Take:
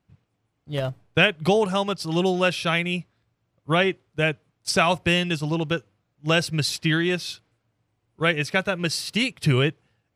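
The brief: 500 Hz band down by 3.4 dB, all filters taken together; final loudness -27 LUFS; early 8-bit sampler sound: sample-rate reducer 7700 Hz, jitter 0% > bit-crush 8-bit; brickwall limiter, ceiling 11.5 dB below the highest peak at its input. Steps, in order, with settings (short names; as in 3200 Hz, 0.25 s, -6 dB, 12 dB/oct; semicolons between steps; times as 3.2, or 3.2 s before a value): bell 500 Hz -4.5 dB; limiter -17.5 dBFS; sample-rate reducer 7700 Hz, jitter 0%; bit-crush 8-bit; gain +1.5 dB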